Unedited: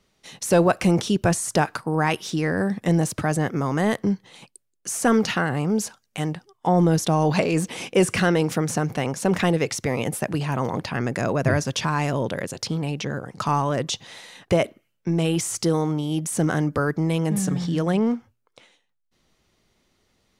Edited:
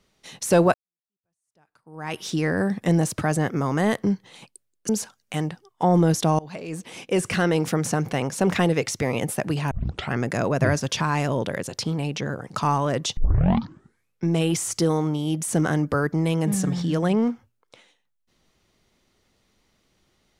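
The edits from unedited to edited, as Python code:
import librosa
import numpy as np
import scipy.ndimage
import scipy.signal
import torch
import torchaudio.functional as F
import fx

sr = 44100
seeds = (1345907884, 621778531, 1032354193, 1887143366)

y = fx.edit(x, sr, fx.fade_in_span(start_s=0.74, length_s=1.48, curve='exp'),
    fx.cut(start_s=4.89, length_s=0.84),
    fx.fade_in_from(start_s=7.23, length_s=1.3, floor_db=-24.0),
    fx.tape_start(start_s=10.55, length_s=0.41),
    fx.tape_start(start_s=14.01, length_s=1.08), tone=tone)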